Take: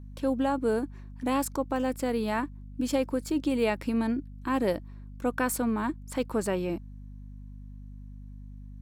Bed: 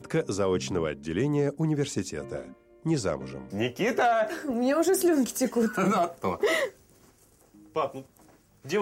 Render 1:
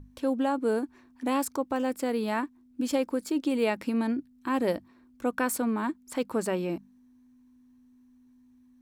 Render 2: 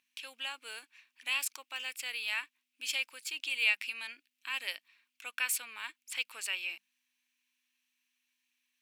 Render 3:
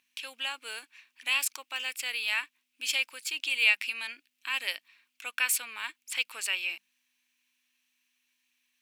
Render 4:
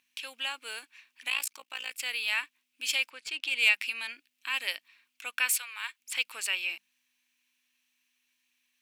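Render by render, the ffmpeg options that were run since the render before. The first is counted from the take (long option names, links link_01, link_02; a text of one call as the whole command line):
ffmpeg -i in.wav -af "bandreject=frequency=50:width_type=h:width=6,bandreject=frequency=100:width_type=h:width=6,bandreject=frequency=150:width_type=h:width=6,bandreject=frequency=200:width_type=h:width=6" out.wav
ffmpeg -i in.wav -af "highpass=frequency=2600:width_type=q:width=4.2" out.wav
ffmpeg -i in.wav -af "volume=5dB" out.wav
ffmpeg -i in.wav -filter_complex "[0:a]asplit=3[link_01][link_02][link_03];[link_01]afade=type=out:start_time=1.28:duration=0.02[link_04];[link_02]tremolo=f=57:d=0.889,afade=type=in:start_time=1.28:duration=0.02,afade=type=out:start_time=1.98:duration=0.02[link_05];[link_03]afade=type=in:start_time=1.98:duration=0.02[link_06];[link_04][link_05][link_06]amix=inputs=3:normalize=0,asettb=1/sr,asplit=3[link_07][link_08][link_09];[link_07]atrim=end=3.104[link_10];[link_08]atrim=start=3.1:end=3.69,asetpts=PTS-STARTPTS,afade=type=in:duration=0.004:curve=qsin,afade=type=out:start_time=0.586:duration=0.004:curve=qsin,adynamicsmooth=sensitivity=3.5:basefreq=3600[link_11];[link_09]atrim=start=3.686[link_12];[link_10][link_11]acrossfade=duration=0.004:curve1=hsin:curve2=qsin[link_13];[link_13][link_12]acrossfade=duration=0.004:curve1=qsin:curve2=hsin,asettb=1/sr,asplit=3[link_14][link_15][link_16];[link_14]atrim=end=5.514[link_17];[link_15]atrim=start=5.51:end=6,asetpts=PTS-STARTPTS,afade=type=in:duration=0.004:curve=qsin,afade=type=out:start_time=0.486:duration=0.004:curve=qsin,highpass=940[link_18];[link_16]atrim=start=5.996[link_19];[link_17][link_18]acrossfade=duration=0.004:curve1=hsin:curve2=qsin[link_20];[link_20][link_19]acrossfade=duration=0.004:curve1=qsin:curve2=hsin" out.wav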